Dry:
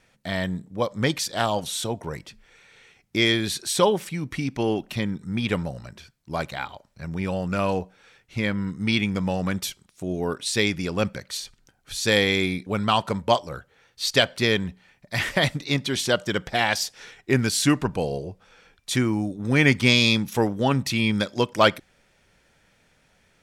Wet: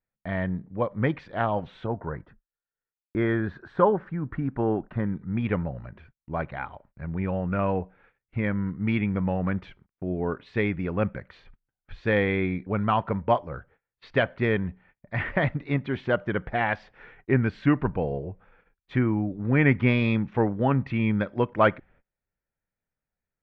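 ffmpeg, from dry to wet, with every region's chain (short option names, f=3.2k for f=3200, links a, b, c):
-filter_complex "[0:a]asettb=1/sr,asplit=3[a][b][c];[a]atrim=end=1.864[d];[b]atrim=start=1.86:end=5.06,asetpts=PTS-STARTPTS,afade=t=in:d=0.004:c=qsin,afade=t=out:st=3.196:d=0.004:c=qsin,agate=range=-33dB:threshold=-45dB:ratio=3:release=100:detection=peak,highshelf=f=1.9k:t=q:w=3:g=-6.5[e];[c]atrim=start=5.056[f];[d][e]acrossfade=d=0.004:c1=hsin:c2=qsin[g];[g][f]acrossfade=d=0.004:c1=qsin:c2=hsin,lowpass=f=2.1k:w=0.5412,lowpass=f=2.1k:w=1.3066,agate=range=-27dB:threshold=-54dB:ratio=16:detection=peak,lowshelf=f=69:g=10,volume=-2dB"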